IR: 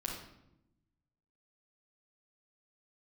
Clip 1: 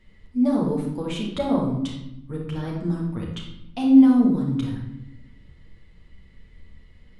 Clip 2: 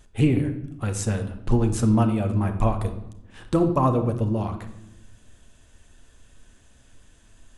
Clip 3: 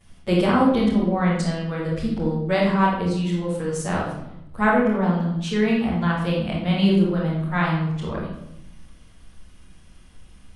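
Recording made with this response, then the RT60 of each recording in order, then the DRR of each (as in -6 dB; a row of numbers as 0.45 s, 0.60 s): 1; 0.85 s, 0.90 s, 0.85 s; -3.5 dB, 6.0 dB, -13.5 dB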